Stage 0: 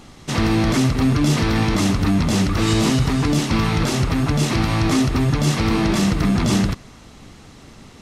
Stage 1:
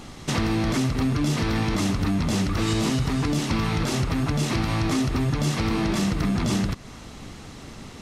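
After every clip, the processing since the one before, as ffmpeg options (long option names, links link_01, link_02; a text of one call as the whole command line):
ffmpeg -i in.wav -af "acompressor=threshold=-27dB:ratio=2.5,volume=2.5dB" out.wav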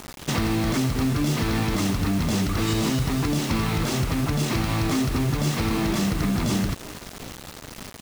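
ffmpeg -i in.wav -filter_complex "[0:a]asplit=5[link_01][link_02][link_03][link_04][link_05];[link_02]adelay=301,afreqshift=110,volume=-21dB[link_06];[link_03]adelay=602,afreqshift=220,volume=-26.7dB[link_07];[link_04]adelay=903,afreqshift=330,volume=-32.4dB[link_08];[link_05]adelay=1204,afreqshift=440,volume=-38dB[link_09];[link_01][link_06][link_07][link_08][link_09]amix=inputs=5:normalize=0,acrusher=bits=5:mix=0:aa=0.000001" out.wav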